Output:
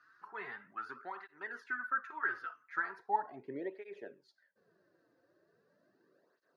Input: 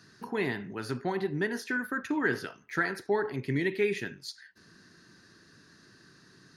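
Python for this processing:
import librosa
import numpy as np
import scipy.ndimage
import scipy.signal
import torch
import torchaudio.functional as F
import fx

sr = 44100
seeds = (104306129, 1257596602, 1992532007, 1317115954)

y = fx.filter_sweep_bandpass(x, sr, from_hz=1300.0, to_hz=570.0, start_s=2.72, end_s=3.58, q=5.2)
y = fx.flanger_cancel(y, sr, hz=0.39, depth_ms=5.3)
y = F.gain(torch.from_numpy(y), 6.0).numpy()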